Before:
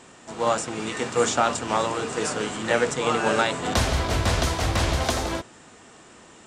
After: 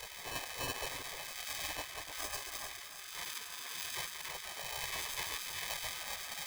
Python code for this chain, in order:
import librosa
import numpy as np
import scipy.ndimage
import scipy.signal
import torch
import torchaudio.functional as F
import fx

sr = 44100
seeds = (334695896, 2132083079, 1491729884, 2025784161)

y = fx.self_delay(x, sr, depth_ms=0.14)
y = fx.paulstretch(y, sr, seeds[0], factor=4.8, window_s=0.1, from_s=0.7)
y = scipy.signal.sosfilt(scipy.signal.butter(2, 51.0, 'highpass', fs=sr, output='sos'), y)
y = librosa.effects.preemphasis(y, coef=0.8, zi=[0.0])
y = fx.over_compress(y, sr, threshold_db=-35.0, ratio=-1.0)
y = fx.rev_spring(y, sr, rt60_s=2.1, pass_ms=(48,), chirp_ms=70, drr_db=2.0)
y = fx.chorus_voices(y, sr, voices=6, hz=0.52, base_ms=28, depth_ms=5.0, mix_pct=55)
y = fx.small_body(y, sr, hz=(200.0, 280.0), ring_ms=65, db=17)
y = fx.sample_hold(y, sr, seeds[1], rate_hz=1400.0, jitter_pct=0)
y = fx.spec_gate(y, sr, threshold_db=-20, keep='weak')
y = fx.echo_alternate(y, sr, ms=306, hz=2200.0, feedback_pct=52, wet_db=-8.5)
y = y * 10.0 ** (2.5 / 20.0)